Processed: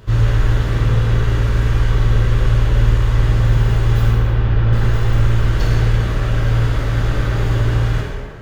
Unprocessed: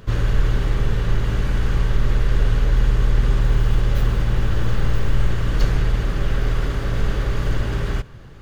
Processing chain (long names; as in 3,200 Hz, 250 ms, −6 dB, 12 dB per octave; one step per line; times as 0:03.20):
0:04.10–0:04.73: high-frequency loss of the air 220 metres
tape delay 102 ms, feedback 74%, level −5.5 dB, low-pass 3,000 Hz
reverb whose tail is shaped and stops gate 370 ms falling, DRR −2.5 dB
level −1 dB